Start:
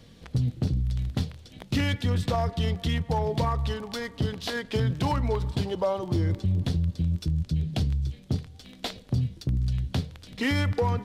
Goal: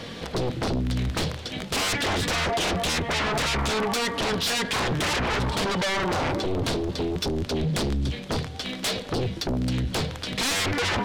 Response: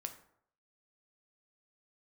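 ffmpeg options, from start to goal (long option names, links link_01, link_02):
-filter_complex "[0:a]asplit=2[link_01][link_02];[link_02]highpass=frequency=720:poles=1,volume=19dB,asoftclip=type=tanh:threshold=-16.5dB[link_03];[link_01][link_03]amix=inputs=2:normalize=0,lowpass=frequency=2200:poles=1,volume=-6dB,aeval=exprs='0.15*sin(PI/2*3.98*val(0)/0.15)':channel_layout=same,volume=-5.5dB"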